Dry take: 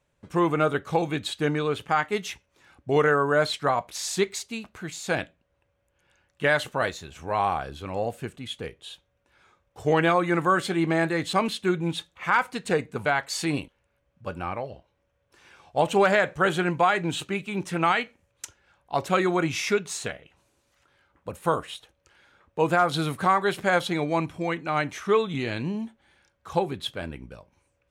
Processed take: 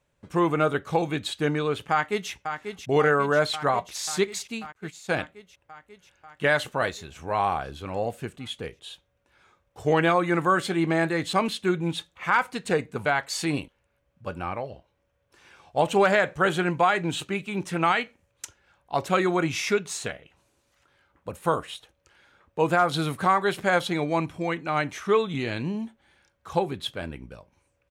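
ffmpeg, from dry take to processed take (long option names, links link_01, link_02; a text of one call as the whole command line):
ffmpeg -i in.wav -filter_complex "[0:a]asplit=2[link_01][link_02];[link_02]afade=type=in:start_time=1.91:duration=0.01,afade=type=out:start_time=2.31:duration=0.01,aecho=0:1:540|1080|1620|2160|2700|3240|3780|4320|4860|5400|5940|6480:0.398107|0.29858|0.223935|0.167951|0.125964|0.0944727|0.0708545|0.0531409|0.0398557|0.0298918|0.0224188|0.0168141[link_03];[link_01][link_03]amix=inputs=2:normalize=0,asettb=1/sr,asplit=3[link_04][link_05][link_06];[link_04]atrim=end=4.724[link_07];[link_05]atrim=start=4.72:end=5.17,asetpts=PTS-STARTPTS,afade=type=in:duration=0.004:curve=qsin,afade=type=out:start_time=0.446:duration=0.004:curve=qsin,agate=range=-33dB:threshold=-32dB:ratio=3:release=100:detection=peak[link_08];[link_06]atrim=start=5.166[link_09];[link_07][link_08]acrossfade=duration=0.004:curve1=hsin:curve2=qsin[link_10];[link_10][link_09]acrossfade=duration=0.004:curve1=qsin:curve2=hsin" out.wav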